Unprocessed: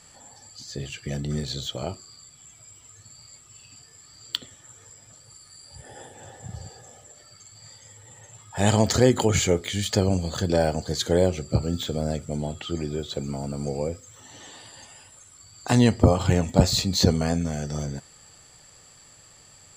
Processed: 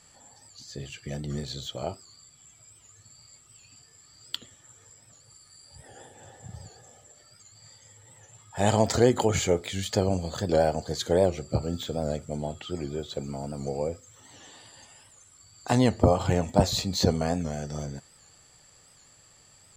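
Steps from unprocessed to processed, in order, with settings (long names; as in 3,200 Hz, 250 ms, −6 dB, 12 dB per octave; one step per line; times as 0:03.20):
dynamic equaliser 710 Hz, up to +6 dB, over −37 dBFS, Q 0.93
wow of a warped record 78 rpm, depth 100 cents
level −5 dB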